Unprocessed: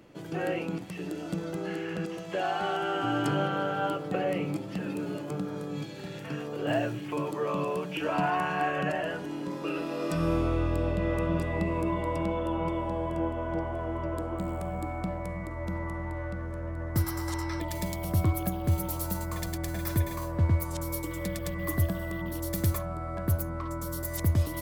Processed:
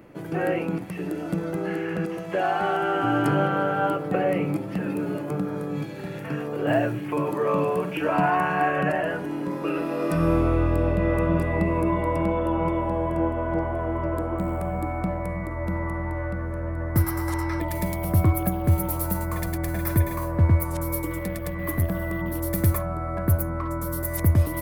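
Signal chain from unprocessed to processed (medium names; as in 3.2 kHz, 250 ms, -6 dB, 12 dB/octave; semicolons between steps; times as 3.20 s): high-order bell 4.8 kHz -8.5 dB; 7.23–7.94 s: flutter echo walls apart 7.8 m, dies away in 0.34 s; 21.19–21.92 s: valve stage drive 21 dB, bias 0.55; trim +6 dB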